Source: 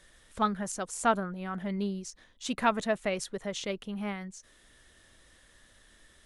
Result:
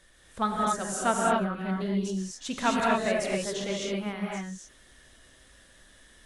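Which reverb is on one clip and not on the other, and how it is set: non-linear reverb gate 0.29 s rising, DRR -3 dB; gain -1 dB

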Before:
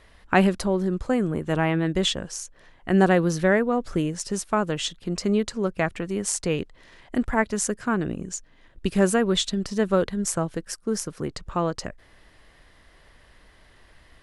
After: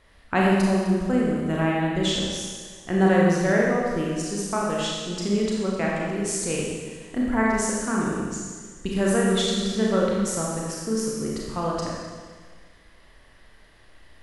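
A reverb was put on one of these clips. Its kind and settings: Schroeder reverb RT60 1.6 s, combs from 28 ms, DRR -4 dB; gain -5 dB

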